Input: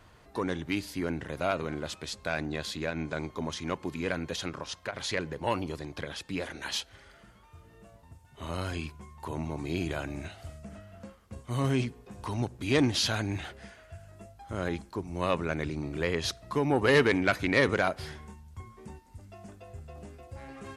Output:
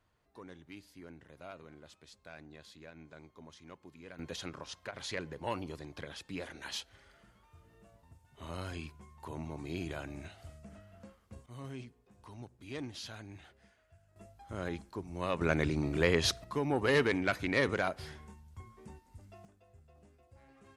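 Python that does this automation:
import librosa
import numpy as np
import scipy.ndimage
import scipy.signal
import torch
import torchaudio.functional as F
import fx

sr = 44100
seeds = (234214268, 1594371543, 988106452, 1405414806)

y = fx.gain(x, sr, db=fx.steps((0.0, -19.0), (4.19, -7.0), (11.46, -17.0), (14.16, -6.0), (15.41, 2.0), (16.44, -5.5), (19.45, -16.0)))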